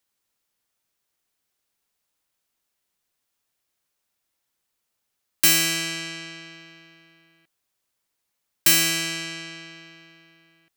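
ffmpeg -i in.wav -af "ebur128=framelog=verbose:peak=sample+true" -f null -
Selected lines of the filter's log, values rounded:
Integrated loudness:
  I:         -20.2 LUFS
  Threshold: -33.7 LUFS
Loudness range:
  LRA:         1.1 LU
  Threshold: -45.2 LUFS
  LRA low:   -26.0 LUFS
  LRA high:  -24.9 LUFS
Sample peak:
  Peak:       -4.6 dBFS
True peak:
  Peak:       -4.2 dBFS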